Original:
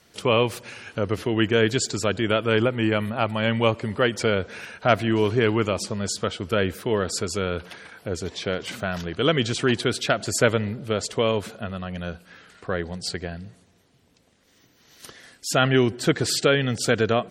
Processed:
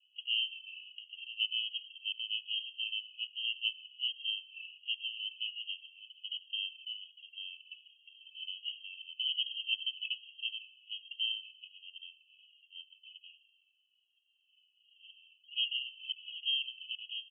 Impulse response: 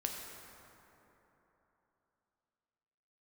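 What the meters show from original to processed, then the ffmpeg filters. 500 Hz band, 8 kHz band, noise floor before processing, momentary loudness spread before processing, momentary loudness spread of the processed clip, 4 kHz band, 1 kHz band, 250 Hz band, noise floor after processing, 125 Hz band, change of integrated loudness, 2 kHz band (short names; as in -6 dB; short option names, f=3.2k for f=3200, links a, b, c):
under -40 dB, under -40 dB, -60 dBFS, 12 LU, 18 LU, -3.0 dB, under -40 dB, under -40 dB, -74 dBFS, under -40 dB, -12.5 dB, -15.0 dB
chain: -filter_complex "[0:a]asuperpass=centerf=2900:order=20:qfactor=4.8,asplit=2[a][b];[1:a]atrim=start_sample=2205,asetrate=27342,aresample=44100[c];[b][c]afir=irnorm=-1:irlink=0,volume=-17dB[d];[a][d]amix=inputs=2:normalize=0,asplit=2[e][f];[f]adelay=2.3,afreqshift=-1.3[g];[e][g]amix=inputs=2:normalize=1,volume=2dB"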